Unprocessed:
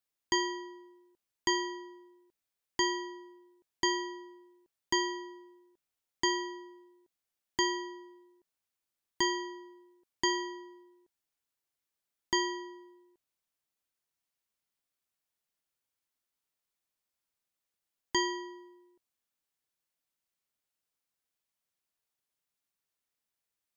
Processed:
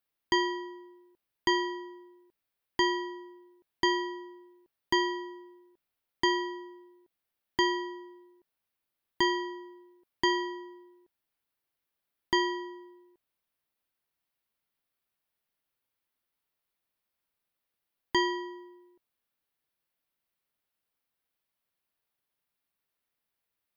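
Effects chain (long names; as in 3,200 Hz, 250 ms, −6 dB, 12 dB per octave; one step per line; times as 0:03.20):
parametric band 7,000 Hz −12.5 dB 0.82 octaves
level +4 dB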